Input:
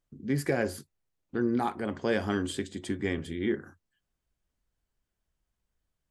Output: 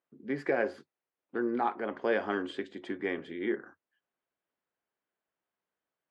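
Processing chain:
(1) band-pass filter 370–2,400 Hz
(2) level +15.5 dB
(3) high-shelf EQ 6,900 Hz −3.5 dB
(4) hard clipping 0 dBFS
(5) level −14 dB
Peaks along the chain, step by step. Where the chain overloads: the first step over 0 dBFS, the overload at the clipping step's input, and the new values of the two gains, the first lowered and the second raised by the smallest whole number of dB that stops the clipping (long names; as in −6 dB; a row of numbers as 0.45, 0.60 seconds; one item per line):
−18.0, −2.5, −2.5, −2.5, −16.5 dBFS
no step passes full scale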